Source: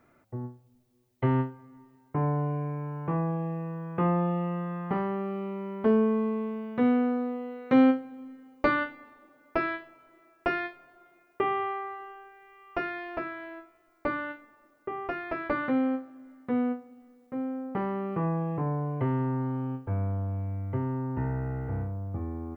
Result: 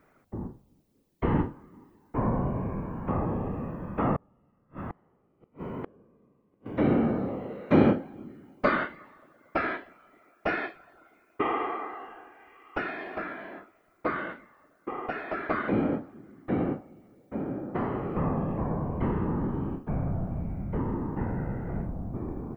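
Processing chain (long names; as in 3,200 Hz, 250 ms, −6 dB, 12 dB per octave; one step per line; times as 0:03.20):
random phases in short frames
0:04.16–0:06.66: gate with flip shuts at −25 dBFS, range −36 dB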